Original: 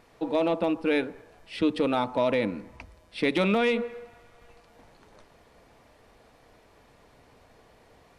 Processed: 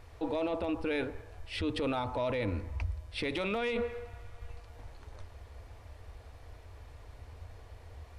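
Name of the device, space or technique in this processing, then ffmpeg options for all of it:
car stereo with a boomy subwoofer: -af "lowshelf=f=120:t=q:w=3:g=12.5,alimiter=level_in=0.5dB:limit=-24dB:level=0:latency=1:release=13,volume=-0.5dB"

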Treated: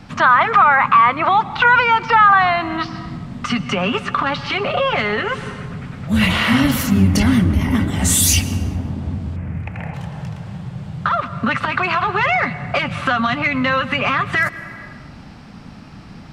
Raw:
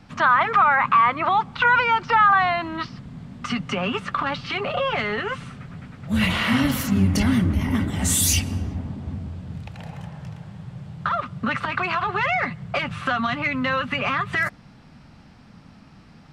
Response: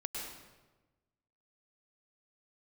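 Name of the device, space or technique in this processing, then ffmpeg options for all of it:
ducked reverb: -filter_complex "[0:a]asplit=3[a][b][c];[1:a]atrim=start_sample=2205[d];[b][d]afir=irnorm=-1:irlink=0[e];[c]apad=whole_len=719743[f];[e][f]sidechaincompress=threshold=-36dB:ratio=4:attack=6.6:release=347,volume=-1dB[g];[a][g]amix=inputs=2:normalize=0,asettb=1/sr,asplit=3[h][i][j];[h]atrim=end=9.364[k];[i]atrim=start=9.36:end=9.94,asetpts=PTS-STARTPTS,afade=t=in:d=0.004:c=qsin,afade=t=out:st=0.576:d=0.004:c=qsin,highshelf=f=2.9k:t=q:w=3:g=-9.5[l];[j]atrim=start=9.936[m];[k][l]acrossfade=d=0.004:c1=hsin:c2=qsin[n];[n][m]acrossfade=d=0.004:c1=qsin:c2=hsin,volume=4.5dB"

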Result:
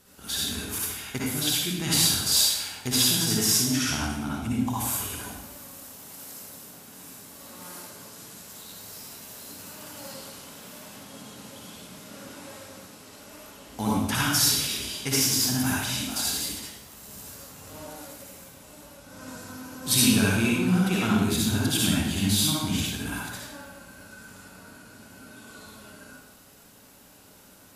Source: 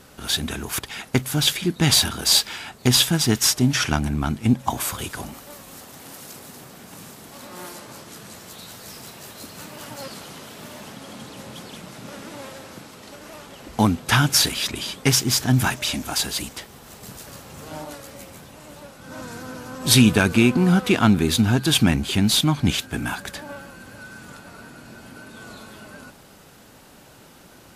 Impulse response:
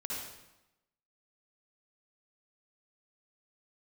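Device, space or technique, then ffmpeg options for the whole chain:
bathroom: -filter_complex "[1:a]atrim=start_sample=2205[a];[0:a][a]afir=irnorm=-1:irlink=0,aemphasis=mode=production:type=cd,volume=-8.5dB"

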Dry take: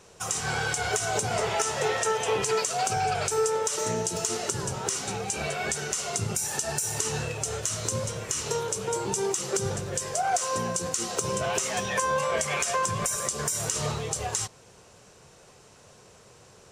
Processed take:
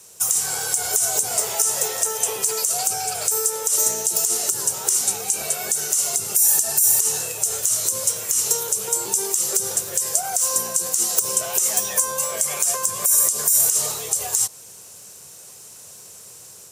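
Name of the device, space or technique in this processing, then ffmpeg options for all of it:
FM broadcast chain: -filter_complex "[0:a]highpass=73,dynaudnorm=f=320:g=3:m=4dB,acrossover=split=320|1200|5000[a][b][c][d];[a]acompressor=threshold=-42dB:ratio=4[e];[b]acompressor=threshold=-25dB:ratio=4[f];[c]acompressor=threshold=-38dB:ratio=4[g];[d]acompressor=threshold=-28dB:ratio=4[h];[e][f][g][h]amix=inputs=4:normalize=0,aemphasis=mode=production:type=50fm,alimiter=limit=-8dB:level=0:latency=1:release=82,asoftclip=type=hard:threshold=-10.5dB,lowpass=f=15k:w=0.5412,lowpass=f=15k:w=1.3066,aemphasis=mode=production:type=50fm,volume=-3.5dB"

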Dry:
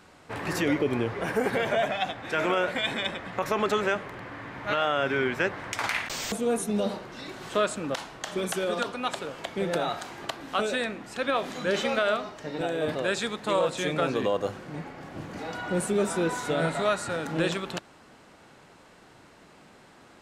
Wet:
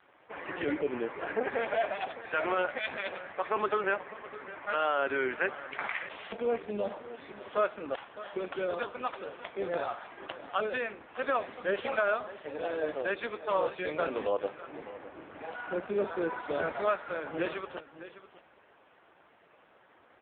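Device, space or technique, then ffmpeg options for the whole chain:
satellite phone: -af "highpass=350,lowpass=3.2k,aecho=1:1:606:0.188,volume=-1.5dB" -ar 8000 -c:a libopencore_amrnb -b:a 5150

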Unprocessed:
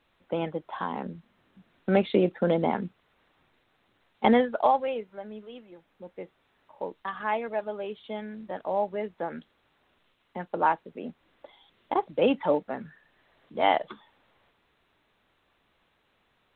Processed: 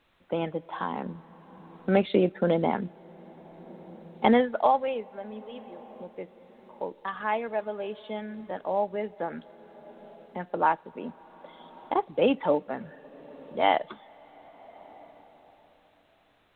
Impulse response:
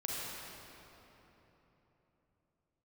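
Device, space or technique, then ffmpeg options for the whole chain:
ducked reverb: -filter_complex "[0:a]asplit=3[a][b][c];[1:a]atrim=start_sample=2205[d];[b][d]afir=irnorm=-1:irlink=0[e];[c]apad=whole_len=730249[f];[e][f]sidechaincompress=threshold=-43dB:ratio=8:attack=16:release=699,volume=-8.5dB[g];[a][g]amix=inputs=2:normalize=0"

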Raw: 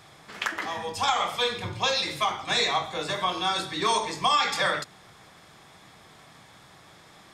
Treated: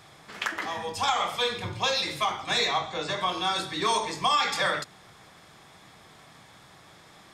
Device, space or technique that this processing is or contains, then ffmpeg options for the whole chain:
parallel distortion: -filter_complex "[0:a]asettb=1/sr,asplit=3[a][b][c];[a]atrim=end=2.584[d];[b]atrim=start=2.58:end=3.21,asetpts=PTS-STARTPTS,afade=t=in:d=0.004:c=qsin,afade=t=out:st=0.626:d=0.004:c=qsin,lowpass=f=7.6k:w=0.5412,lowpass=f=7.6k:w=1.3066[e];[c]atrim=start=3.206[f];[d][e]acrossfade=d=0.004:c1=hsin:c2=qsin[g];[g][f]acrossfade=d=0.004:c1=qsin:c2=hsin,asplit=2[h][i];[i]asoftclip=type=hard:threshold=-25dB,volume=-14dB[j];[h][j]amix=inputs=2:normalize=0,volume=-2dB"

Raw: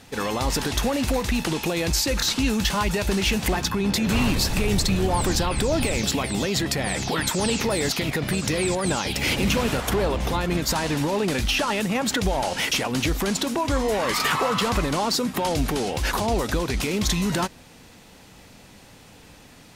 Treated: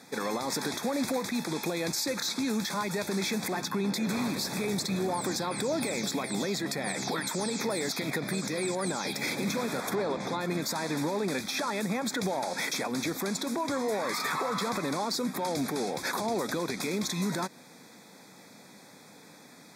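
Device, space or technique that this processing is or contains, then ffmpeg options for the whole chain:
PA system with an anti-feedback notch: -filter_complex "[0:a]highpass=f=160:w=0.5412,highpass=f=160:w=1.3066,asuperstop=centerf=2900:order=8:qfactor=3.6,alimiter=limit=-19dB:level=0:latency=1:release=139,asettb=1/sr,asplit=3[a][b][c];[a]atrim=end=9.954[d];[b]atrim=start=9.95:end=10.4,asetpts=PTS-STARTPTS,afade=t=in:d=0.004:c=qsin,afade=t=out:st=0.446:d=0.004:c=qsin,lowpass=7.3k[e];[c]atrim=start=10.396[f];[d][e]acrossfade=d=0.004:c1=hsin:c2=qsin[g];[g][f]acrossfade=d=0.004:c1=qsin:c2=hsin,volume=-2.5dB"

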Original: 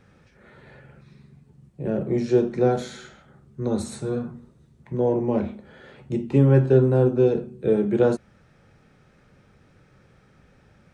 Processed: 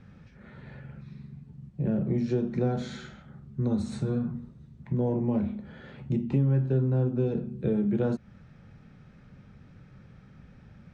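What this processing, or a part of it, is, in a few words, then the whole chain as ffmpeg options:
jukebox: -af "lowpass=5.5k,lowshelf=f=280:t=q:w=1.5:g=6.5,acompressor=threshold=-24dB:ratio=3,volume=-1.5dB"

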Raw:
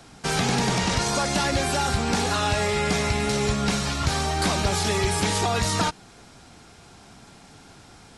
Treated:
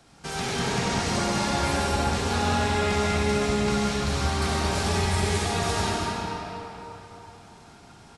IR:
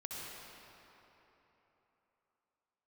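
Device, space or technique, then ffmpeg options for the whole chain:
cave: -filter_complex "[0:a]aecho=1:1:227:0.398[a];[1:a]atrim=start_sample=2205[b];[a][b]afir=irnorm=-1:irlink=0,volume=-2.5dB"

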